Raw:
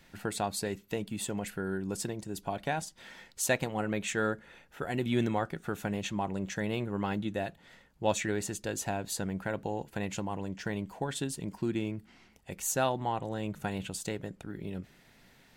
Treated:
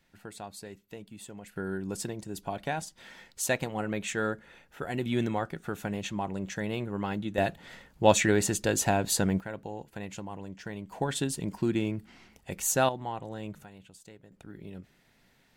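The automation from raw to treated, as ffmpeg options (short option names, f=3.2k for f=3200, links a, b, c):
-af "asetnsamples=n=441:p=0,asendcmd='1.56 volume volume 0dB;7.38 volume volume 8dB;9.4 volume volume -4.5dB;10.92 volume volume 4dB;12.89 volume volume -3.5dB;13.64 volume volume -15.5dB;14.32 volume volume -5dB',volume=-10dB"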